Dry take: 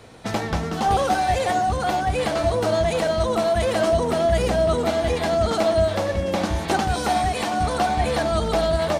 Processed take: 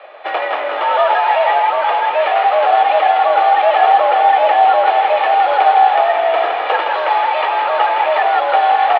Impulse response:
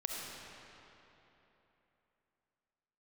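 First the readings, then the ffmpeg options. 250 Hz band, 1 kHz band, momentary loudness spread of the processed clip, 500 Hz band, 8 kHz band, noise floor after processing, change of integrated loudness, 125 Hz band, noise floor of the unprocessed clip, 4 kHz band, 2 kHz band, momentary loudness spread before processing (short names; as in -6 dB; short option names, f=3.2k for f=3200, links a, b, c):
under -10 dB, +13.0 dB, 5 LU, +4.5 dB, under -25 dB, -20 dBFS, +8.5 dB, under -40 dB, -28 dBFS, +4.0 dB, +10.0 dB, 4 LU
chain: -filter_complex "[0:a]aecho=1:1:1.8:0.51,asplit=2[a][b];[b]aeval=exprs='(mod(10.6*val(0)+1,2)-1)/10.6':c=same,volume=-9dB[c];[a][c]amix=inputs=2:normalize=0,highpass=f=330:t=q:w=0.5412,highpass=f=330:t=q:w=1.307,lowpass=f=3k:t=q:w=0.5176,lowpass=f=3k:t=q:w=0.7071,lowpass=f=3k:t=q:w=1.932,afreqshift=120,asplit=6[d][e][f][g][h][i];[e]adelay=163,afreqshift=48,volume=-6dB[j];[f]adelay=326,afreqshift=96,volume=-13.7dB[k];[g]adelay=489,afreqshift=144,volume=-21.5dB[l];[h]adelay=652,afreqshift=192,volume=-29.2dB[m];[i]adelay=815,afreqshift=240,volume=-37dB[n];[d][j][k][l][m][n]amix=inputs=6:normalize=0,volume=6.5dB"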